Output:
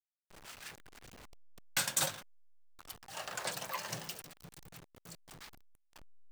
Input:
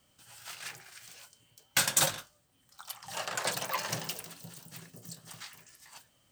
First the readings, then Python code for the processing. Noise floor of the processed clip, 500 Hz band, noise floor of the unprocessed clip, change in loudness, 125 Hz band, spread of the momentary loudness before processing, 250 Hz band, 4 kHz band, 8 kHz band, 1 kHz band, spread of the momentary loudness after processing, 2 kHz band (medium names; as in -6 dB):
-77 dBFS, -6.0 dB, -69 dBFS, -5.5 dB, -6.0 dB, 22 LU, -5.5 dB, -6.0 dB, -6.0 dB, -6.0 dB, 23 LU, -6.0 dB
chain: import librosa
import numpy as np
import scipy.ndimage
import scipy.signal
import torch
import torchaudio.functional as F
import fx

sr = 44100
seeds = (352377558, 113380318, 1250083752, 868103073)

y = fx.delta_hold(x, sr, step_db=-41.0)
y = y * 10.0 ** (-6.0 / 20.0)